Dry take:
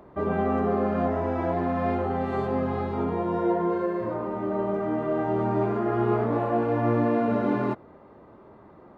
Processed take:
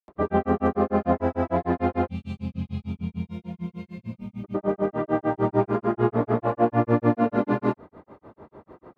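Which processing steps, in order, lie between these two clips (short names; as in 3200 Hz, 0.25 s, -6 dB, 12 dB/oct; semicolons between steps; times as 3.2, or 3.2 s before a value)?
spectral gain 2.13–4.47, 250–2100 Hz -24 dB; grains 0.138 s, grains 6.7/s, pitch spread up and down by 0 st; gain +6 dB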